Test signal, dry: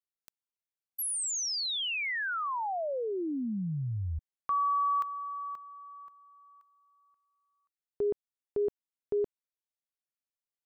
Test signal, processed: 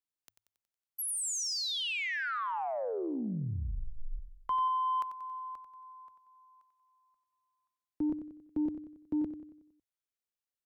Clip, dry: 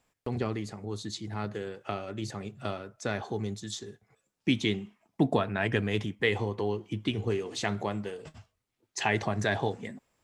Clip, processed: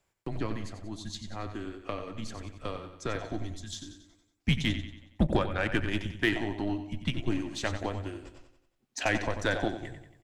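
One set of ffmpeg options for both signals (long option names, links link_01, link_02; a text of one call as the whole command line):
ffmpeg -i in.wav -af "afreqshift=-110,aecho=1:1:92|184|276|368|460|552:0.355|0.174|0.0852|0.0417|0.0205|0.01,aeval=exprs='0.251*(cos(1*acos(clip(val(0)/0.251,-1,1)))-cos(1*PI/2))+0.00794*(cos(5*acos(clip(val(0)/0.251,-1,1)))-cos(5*PI/2))+0.0158*(cos(7*acos(clip(val(0)/0.251,-1,1)))-cos(7*PI/2))':channel_layout=same" out.wav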